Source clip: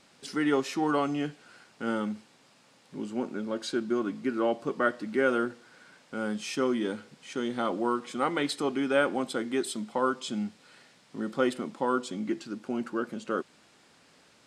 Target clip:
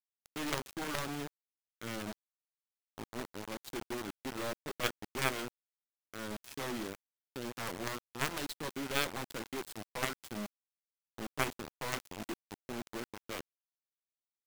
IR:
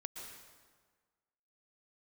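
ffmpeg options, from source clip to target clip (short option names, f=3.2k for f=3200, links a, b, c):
-af "acrusher=bits=4:mix=0:aa=0.000001,aeval=exprs='0.282*(cos(1*acos(clip(val(0)/0.282,-1,1)))-cos(1*PI/2))+0.0355*(cos(2*acos(clip(val(0)/0.282,-1,1)))-cos(2*PI/2))+0.126*(cos(3*acos(clip(val(0)/0.282,-1,1)))-cos(3*PI/2))':c=same,volume=14dB,asoftclip=hard,volume=-14dB,volume=1dB"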